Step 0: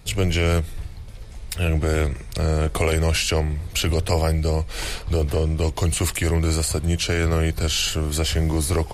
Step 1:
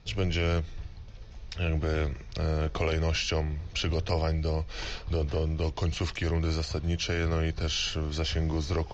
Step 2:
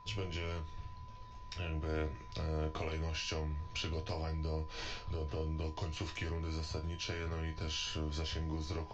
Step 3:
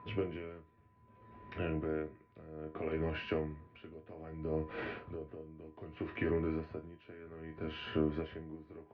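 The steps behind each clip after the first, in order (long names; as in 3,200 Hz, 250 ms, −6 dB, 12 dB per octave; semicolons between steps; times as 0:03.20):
elliptic low-pass filter 6,100 Hz, stop band 40 dB; notch filter 2,100 Hz, Q 17; level −6.5 dB
downward compressor, threshold −30 dBFS, peak gain reduction 7 dB; steady tone 1,000 Hz −46 dBFS; resonators tuned to a chord D#2 sus4, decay 0.22 s; level +4.5 dB
loudspeaker in its box 140–2,100 Hz, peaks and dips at 260 Hz +9 dB, 390 Hz +6 dB, 940 Hz −8 dB; tremolo with a sine in dB 0.63 Hz, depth 19 dB; level +7 dB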